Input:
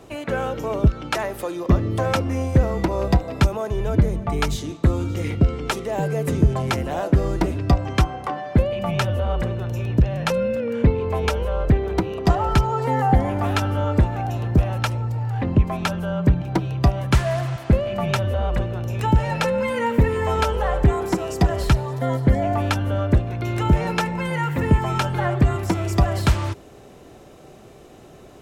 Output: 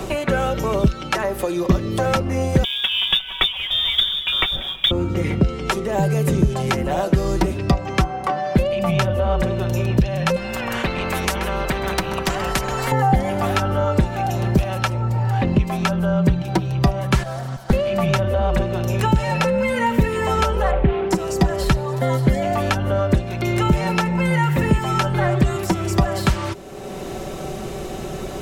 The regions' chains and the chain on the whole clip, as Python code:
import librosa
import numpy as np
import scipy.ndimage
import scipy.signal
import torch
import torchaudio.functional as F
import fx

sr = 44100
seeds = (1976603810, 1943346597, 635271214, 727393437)

y = fx.chain(x, sr, fx.freq_invert(carrier_hz=3600),
    fx.quant_companded(bits=6),
    fx.echo_single(ms=187, db=-23.0), at=(2.64, 4.91))
y = fx.chain(y, sr, fx.peak_eq(hz=2400.0, db=-6.0, octaves=2.8),
    fx.echo_single(ms=130, db=-20.5),
    fx.spectral_comp(ratio=4.0), at=(10.36, 12.92))
y = fx.chain(y, sr, fx.lower_of_two(delay_ms=1.3),
    fx.peak_eq(hz=2500.0, db=-10.5, octaves=0.64),
    fx.upward_expand(threshold_db=-33.0, expansion=1.5), at=(17.23, 17.73))
y = fx.chain(y, sr, fx.median_filter(points=25),
    fx.lowpass(hz=2700.0, slope=24), at=(20.71, 21.11))
y = y + 0.49 * np.pad(y, (int(5.3 * sr / 1000.0), 0))[:len(y)]
y = fx.band_squash(y, sr, depth_pct=70)
y = y * librosa.db_to_amplitude(1.0)